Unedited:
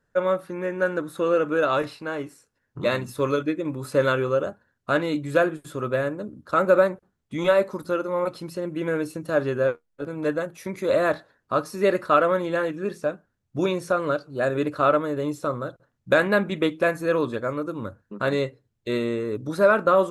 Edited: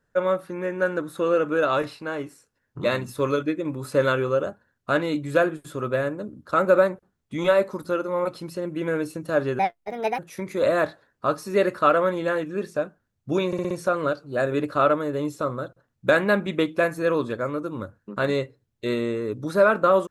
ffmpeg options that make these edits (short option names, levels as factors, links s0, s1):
-filter_complex "[0:a]asplit=7[s0][s1][s2][s3][s4][s5][s6];[s0]atrim=end=9.594[s7];[s1]atrim=start=9.59:end=10.46,asetpts=PTS-STARTPTS,asetrate=64386,aresample=44100[s8];[s2]atrim=start=10.456:end=13.802[s9];[s3]atrim=start=13.738:end=13.802[s10];[s4]atrim=start=13.738:end=13.802[s11];[s5]atrim=start=13.738:end=13.802[s12];[s6]atrim=start=13.738[s13];[s7][s8]acrossfade=d=0.004:c1=hsin:c2=hsin[s14];[s14][s9]acrossfade=d=0.004:c1=hsin:c2=hsin[s15];[s15][s10]acrossfade=d=0.004:c1=hsin:c2=hsin[s16];[s16][s11]acrossfade=d=0.004:c1=hsin:c2=hsin[s17];[s17][s12]acrossfade=d=0.004:c1=hsin:c2=hsin[s18];[s18][s13]acrossfade=d=0.004:c1=hsin:c2=hsin"